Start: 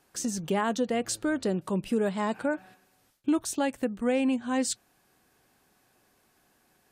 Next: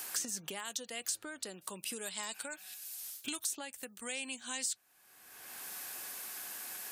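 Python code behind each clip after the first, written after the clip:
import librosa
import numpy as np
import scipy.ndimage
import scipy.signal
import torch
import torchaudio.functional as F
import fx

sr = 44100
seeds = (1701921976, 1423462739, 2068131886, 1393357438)

y = librosa.effects.preemphasis(x, coef=0.97, zi=[0.0])
y = fx.band_squash(y, sr, depth_pct=100)
y = y * 10.0 ** (3.0 / 20.0)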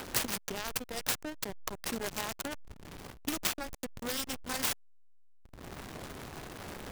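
y = fx.self_delay(x, sr, depth_ms=0.7)
y = fx.backlash(y, sr, play_db=-34.5)
y = y * 10.0 ** (9.0 / 20.0)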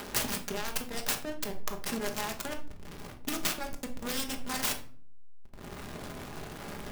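y = fx.room_shoebox(x, sr, seeds[0], volume_m3=540.0, walls='furnished', distance_m=1.3)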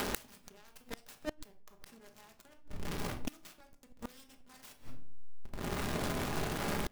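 y = fx.gate_flip(x, sr, shuts_db=-27.0, range_db=-30)
y = y * 10.0 ** (6.5 / 20.0)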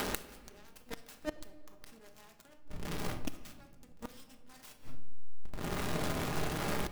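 y = fx.room_shoebox(x, sr, seeds[1], volume_m3=2400.0, walls='mixed', distance_m=0.52)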